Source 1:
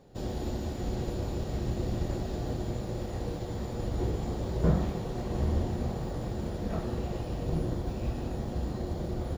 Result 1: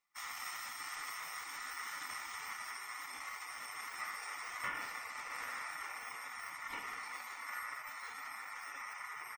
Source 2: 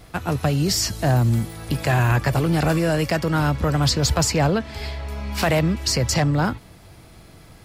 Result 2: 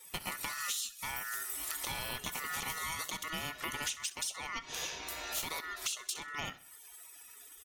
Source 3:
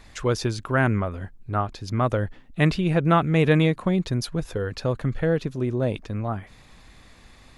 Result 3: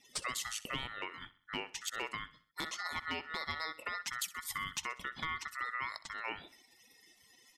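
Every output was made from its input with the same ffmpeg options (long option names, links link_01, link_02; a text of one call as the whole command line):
ffmpeg -i in.wav -af "highpass=230,crystalizer=i=6.5:c=0,acompressor=threshold=-26dB:ratio=12,afftdn=noise_reduction=22:noise_floor=-41,asoftclip=type=hard:threshold=-19dB,aeval=exprs='val(0)*sin(2*PI*1600*n/s)':channel_layout=same,aecho=1:1:64|128|192|256:0.133|0.06|0.027|0.0122,volume=-5.5dB" out.wav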